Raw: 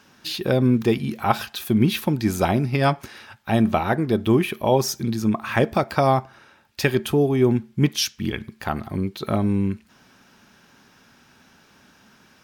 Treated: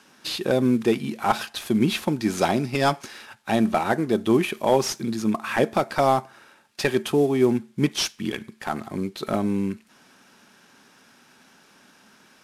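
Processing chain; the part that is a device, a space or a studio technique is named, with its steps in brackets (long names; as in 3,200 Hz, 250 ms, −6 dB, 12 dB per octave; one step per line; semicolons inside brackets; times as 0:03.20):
0:02.37–0:03.56: dynamic equaliser 5,800 Hz, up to +8 dB, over −47 dBFS, Q 0.94
early wireless headset (high-pass filter 190 Hz 12 dB per octave; variable-slope delta modulation 64 kbit/s)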